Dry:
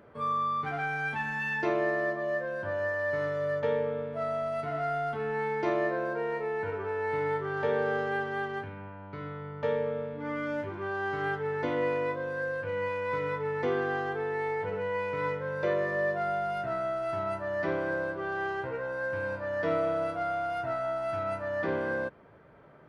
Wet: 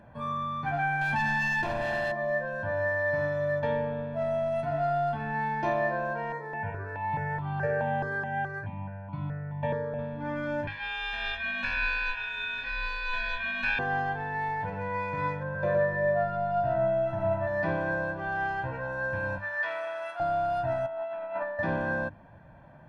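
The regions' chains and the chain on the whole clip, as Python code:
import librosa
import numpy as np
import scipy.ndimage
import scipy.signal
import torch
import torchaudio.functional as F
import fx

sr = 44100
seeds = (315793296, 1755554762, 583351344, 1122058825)

y = fx.chain(x, sr, fx.clip_hard(threshold_db=-30.0),
    fx.env_flatten(amount_pct=100), at=(1.01, 2.12))
y = fx.chain(y, sr, fx.highpass(hz=140.0, slope=12),
    fx.low_shelf(hz=260.0, db=10.5),
    fx.phaser_held(hz=4.7, low_hz=750.0, high_hz=1700.0), at=(6.32, 9.99))
y = fx.chain(y, sr, fx.ring_mod(carrier_hz=2000.0),
    fx.echo_single(ms=940, db=-15.5), at=(10.67, 13.79))
y = fx.chain(y, sr, fx.lowpass(hz=1500.0, slope=6),
    fx.echo_single(ms=114, db=-3.0), at=(15.43, 17.47))
y = fx.chain(y, sr, fx.highpass(hz=1200.0, slope=12),
    fx.dynamic_eq(hz=1700.0, q=0.73, threshold_db=-48.0, ratio=4.0, max_db=5), at=(19.38, 20.2))
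y = fx.chain(y, sr, fx.cabinet(low_hz=270.0, low_slope=24, high_hz=3600.0, hz=(290.0, 470.0, 1100.0), db=(-7, 3, 6)),
    fx.over_compress(threshold_db=-35.0, ratio=-0.5), at=(20.86, 21.59))
y = fx.tilt_eq(y, sr, slope=-1.5)
y = fx.hum_notches(y, sr, base_hz=50, count=7)
y = y + 0.85 * np.pad(y, (int(1.2 * sr / 1000.0), 0))[:len(y)]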